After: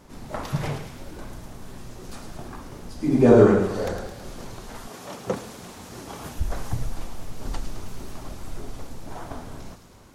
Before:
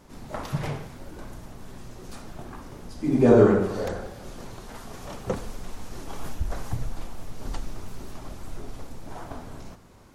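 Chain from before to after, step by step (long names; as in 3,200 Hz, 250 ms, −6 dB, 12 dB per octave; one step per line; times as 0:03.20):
0:04.87–0:06.35: high-pass filter 200 Hz → 66 Hz 12 dB per octave
delay with a high-pass on its return 108 ms, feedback 66%, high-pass 3,100 Hz, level −6 dB
level +2 dB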